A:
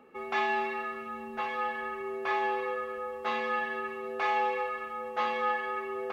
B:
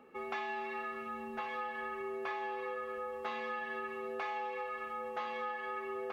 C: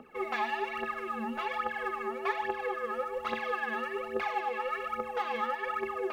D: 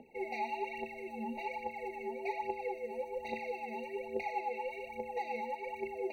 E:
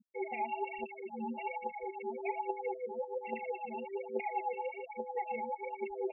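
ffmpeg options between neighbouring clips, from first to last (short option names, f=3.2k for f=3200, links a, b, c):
-af "acompressor=threshold=-34dB:ratio=6,volume=-2dB"
-af "aphaser=in_gain=1:out_gain=1:delay=4.9:decay=0.74:speed=1.2:type=triangular,volume=2.5dB"
-af "afftfilt=real='re*eq(mod(floor(b*sr/1024/940),2),0)':imag='im*eq(mod(floor(b*sr/1024/940),2),0)':win_size=1024:overlap=0.75,volume=-3.5dB"
-af "aeval=exprs='val(0)+0.00158*(sin(2*PI*60*n/s)+sin(2*PI*2*60*n/s)/2+sin(2*PI*3*60*n/s)/3+sin(2*PI*4*60*n/s)/4+sin(2*PI*5*60*n/s)/5)':c=same,afftfilt=real='re*gte(hypot(re,im),0.0224)':imag='im*gte(hypot(re,im),0.0224)':win_size=1024:overlap=0.75,volume=1dB"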